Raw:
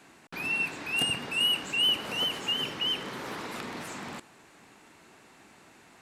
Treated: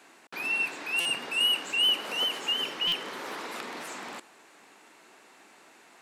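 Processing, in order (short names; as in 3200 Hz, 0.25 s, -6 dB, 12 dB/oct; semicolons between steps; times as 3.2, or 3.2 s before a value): HPF 330 Hz 12 dB/oct; stuck buffer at 1/2.87, samples 256, times 8; gain +1 dB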